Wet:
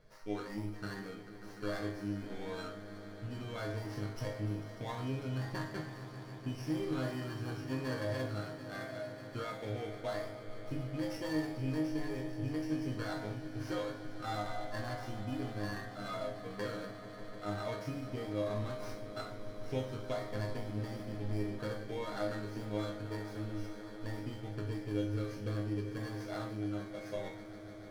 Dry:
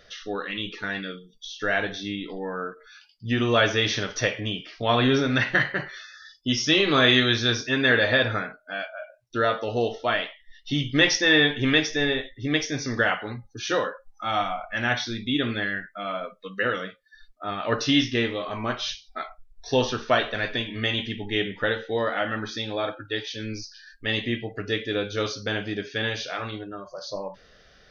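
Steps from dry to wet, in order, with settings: FFT order left unsorted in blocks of 16 samples; LPF 4500 Hz 12 dB/oct; low shelf 190 Hz +11.5 dB; compressor 10:1, threshold -26 dBFS, peak gain reduction 13 dB; resonator bank G#2 major, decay 0.39 s; swelling echo 0.148 s, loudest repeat 5, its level -17 dB; on a send at -14 dB: reverb RT60 0.70 s, pre-delay 38 ms; on the sum: running maximum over 3 samples; gain +5.5 dB

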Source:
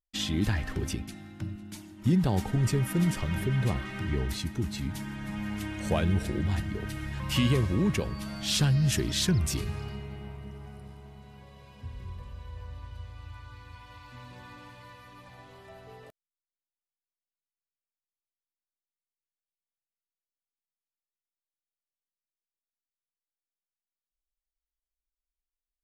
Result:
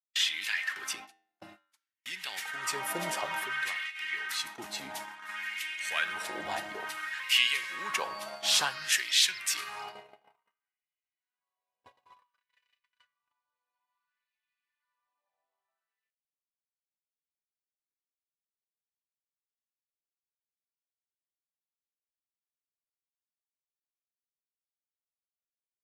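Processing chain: gate -36 dBFS, range -42 dB; flange 0.1 Hz, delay 9.8 ms, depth 4.3 ms, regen -86%; LFO high-pass sine 0.57 Hz 660–2300 Hz; gain +7.5 dB

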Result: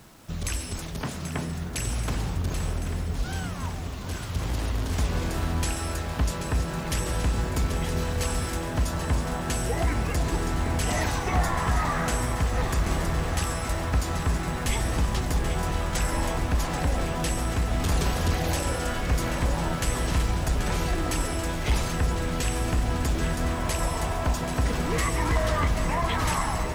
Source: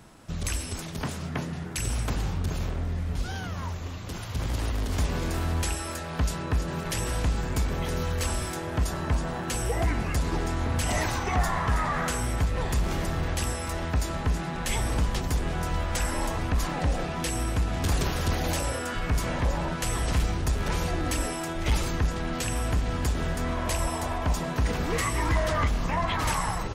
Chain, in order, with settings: echo with dull and thin repeats by turns 0.392 s, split 1000 Hz, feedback 88%, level -8 dB; bit-crush 9-bit

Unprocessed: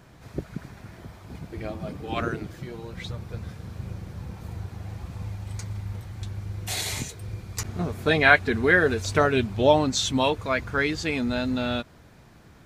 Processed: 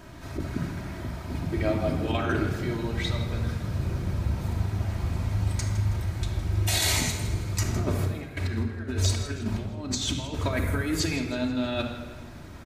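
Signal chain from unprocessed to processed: 10.51–11 EQ curve 210 Hz 0 dB, 5100 Hz -9 dB, 10000 Hz +12 dB; negative-ratio compressor -30 dBFS, ratio -0.5; feedback echo 0.161 s, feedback 45%, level -14.5 dB; reverb RT60 1.1 s, pre-delay 3 ms, DRR 0.5 dB

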